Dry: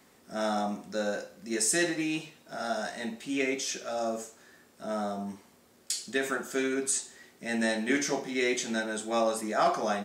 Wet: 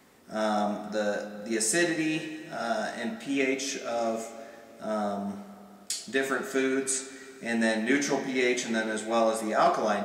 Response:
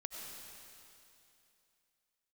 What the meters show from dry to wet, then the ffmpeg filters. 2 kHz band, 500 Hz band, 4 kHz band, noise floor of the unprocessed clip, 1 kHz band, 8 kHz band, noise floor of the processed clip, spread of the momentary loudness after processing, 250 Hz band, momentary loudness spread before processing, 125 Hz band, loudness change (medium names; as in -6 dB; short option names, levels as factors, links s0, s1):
+2.5 dB, +3.0 dB, +0.5 dB, -61 dBFS, +2.5 dB, -0.5 dB, -50 dBFS, 13 LU, +3.0 dB, 11 LU, +3.0 dB, +2.0 dB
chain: -filter_complex "[0:a]asplit=2[s0][s1];[1:a]atrim=start_sample=2205,lowpass=3900[s2];[s1][s2]afir=irnorm=-1:irlink=0,volume=0.562[s3];[s0][s3]amix=inputs=2:normalize=0"